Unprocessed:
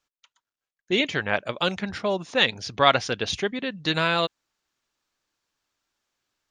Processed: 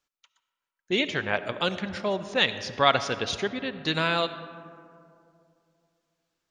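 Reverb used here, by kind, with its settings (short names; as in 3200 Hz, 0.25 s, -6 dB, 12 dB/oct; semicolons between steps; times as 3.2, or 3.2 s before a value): digital reverb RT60 2.6 s, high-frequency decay 0.35×, pre-delay 30 ms, DRR 12 dB; gain -2.5 dB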